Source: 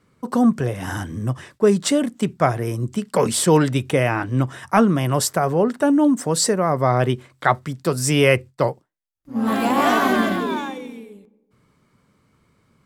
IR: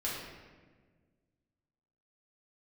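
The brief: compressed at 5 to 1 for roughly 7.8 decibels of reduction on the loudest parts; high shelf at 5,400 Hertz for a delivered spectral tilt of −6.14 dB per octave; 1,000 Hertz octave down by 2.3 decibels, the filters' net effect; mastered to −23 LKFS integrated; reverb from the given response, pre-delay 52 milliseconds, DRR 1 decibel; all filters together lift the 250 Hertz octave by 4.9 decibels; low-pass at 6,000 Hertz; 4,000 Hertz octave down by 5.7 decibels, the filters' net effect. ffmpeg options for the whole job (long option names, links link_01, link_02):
-filter_complex "[0:a]lowpass=6000,equalizer=frequency=250:width_type=o:gain=6,equalizer=frequency=1000:width_type=o:gain=-3,equalizer=frequency=4000:width_type=o:gain=-3.5,highshelf=frequency=5400:gain=-7.5,acompressor=threshold=-15dB:ratio=5,asplit=2[link_01][link_02];[1:a]atrim=start_sample=2205,adelay=52[link_03];[link_02][link_03]afir=irnorm=-1:irlink=0,volume=-5.5dB[link_04];[link_01][link_04]amix=inputs=2:normalize=0,volume=-4.5dB"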